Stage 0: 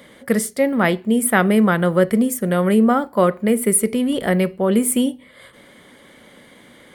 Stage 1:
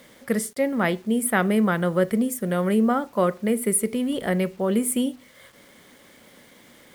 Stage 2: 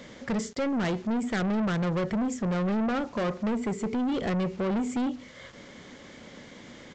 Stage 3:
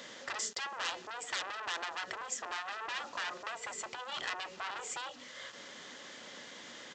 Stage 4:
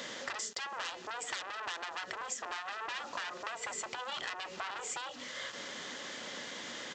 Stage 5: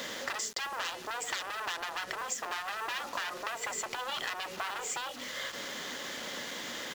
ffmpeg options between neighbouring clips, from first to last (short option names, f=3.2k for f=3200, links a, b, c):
-af "acrusher=bits=7:mix=0:aa=0.000001,volume=-5.5dB"
-af "lowshelf=f=330:g=6,acompressor=threshold=-24dB:ratio=1.5,aresample=16000,asoftclip=type=tanh:threshold=-28dB,aresample=44100,volume=3dB"
-af "afftfilt=real='re*lt(hypot(re,im),0.0891)':imag='im*lt(hypot(re,im),0.0891)':win_size=1024:overlap=0.75,highpass=f=1.3k:p=1,bandreject=f=2.2k:w=9.5,volume=4dB"
-af "acompressor=threshold=-42dB:ratio=6,volume=6dB"
-af "acrusher=bits=7:mix=0:aa=0.5,volume=3.5dB"